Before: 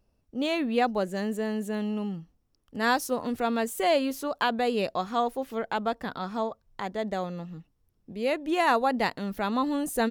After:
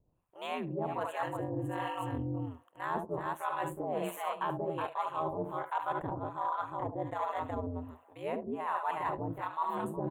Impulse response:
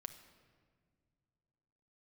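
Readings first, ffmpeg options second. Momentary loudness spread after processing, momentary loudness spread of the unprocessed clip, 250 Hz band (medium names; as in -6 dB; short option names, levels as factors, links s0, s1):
4 LU, 11 LU, -10.5 dB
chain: -filter_complex "[0:a]lowshelf=f=350:g=-4.5,asplit=2[s0][s1];[1:a]atrim=start_sample=2205,lowpass=2400[s2];[s1][s2]afir=irnorm=-1:irlink=0,volume=0.794[s3];[s0][s3]amix=inputs=2:normalize=0,aeval=exprs='val(0)*sin(2*PI*83*n/s)':c=same,equalizer=f=1000:w=3.1:g=11.5,aecho=1:1:72|78|369:0.282|0.211|0.473,dynaudnorm=f=280:g=5:m=3.76,acrossover=split=610[s4][s5];[s4]aeval=exprs='val(0)*(1-1/2+1/2*cos(2*PI*1.3*n/s))':c=same[s6];[s5]aeval=exprs='val(0)*(1-1/2-1/2*cos(2*PI*1.3*n/s))':c=same[s7];[s6][s7]amix=inputs=2:normalize=0,asuperstop=centerf=5000:order=4:qfactor=1.4,areverse,acompressor=threshold=0.0251:ratio=6,areverse"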